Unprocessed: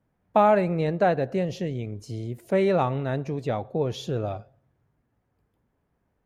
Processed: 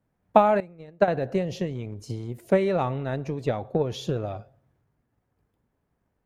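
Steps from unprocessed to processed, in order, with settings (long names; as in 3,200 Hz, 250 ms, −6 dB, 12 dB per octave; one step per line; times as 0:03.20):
transient designer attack +8 dB, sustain +4 dB
0:00.60–0:01.08: expander for the loud parts 2.5 to 1, over −26 dBFS
level −3 dB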